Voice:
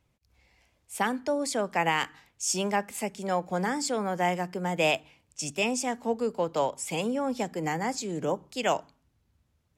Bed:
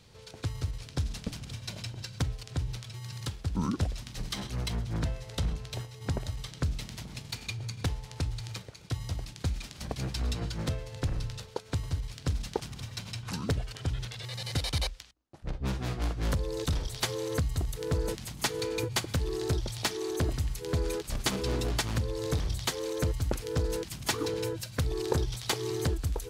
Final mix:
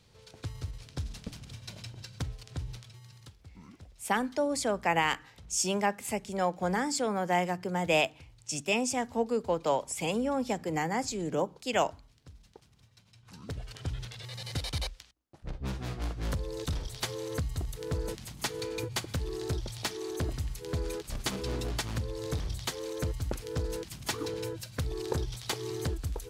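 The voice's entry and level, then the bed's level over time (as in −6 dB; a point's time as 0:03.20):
3.10 s, −1.0 dB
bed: 0:02.73 −5 dB
0:03.61 −22 dB
0:13.11 −22 dB
0:13.71 −3.5 dB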